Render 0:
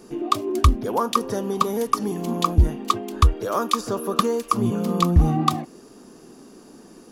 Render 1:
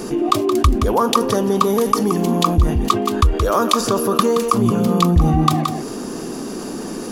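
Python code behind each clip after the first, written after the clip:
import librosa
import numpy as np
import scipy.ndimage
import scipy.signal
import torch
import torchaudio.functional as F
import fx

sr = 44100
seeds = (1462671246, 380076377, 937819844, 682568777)

y = x + 10.0 ** (-11.5 / 20.0) * np.pad(x, (int(173 * sr / 1000.0), 0))[:len(x)]
y = fx.env_flatten(y, sr, amount_pct=50)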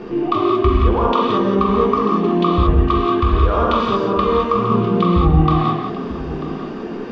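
y = scipy.signal.sosfilt(scipy.signal.butter(4, 3200.0, 'lowpass', fs=sr, output='sos'), x)
y = y + 10.0 ** (-15.5 / 20.0) * np.pad(y, (int(941 * sr / 1000.0), 0))[:len(y)]
y = fx.rev_gated(y, sr, seeds[0], gate_ms=250, shape='flat', drr_db=-4.5)
y = F.gain(torch.from_numpy(y), -5.0).numpy()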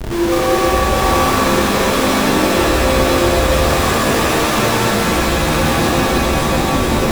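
y = fx.tracing_dist(x, sr, depth_ms=0.19)
y = fx.schmitt(y, sr, flips_db=-26.0)
y = fx.rev_shimmer(y, sr, seeds[1], rt60_s=3.4, semitones=7, shimmer_db=-2, drr_db=-3.0)
y = F.gain(torch.from_numpy(y), -6.0).numpy()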